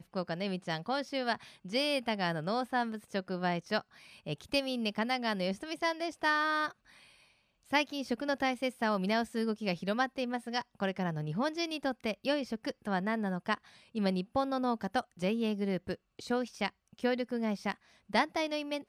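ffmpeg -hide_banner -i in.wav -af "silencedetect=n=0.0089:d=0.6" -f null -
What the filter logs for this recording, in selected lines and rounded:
silence_start: 6.71
silence_end: 7.72 | silence_duration: 1.01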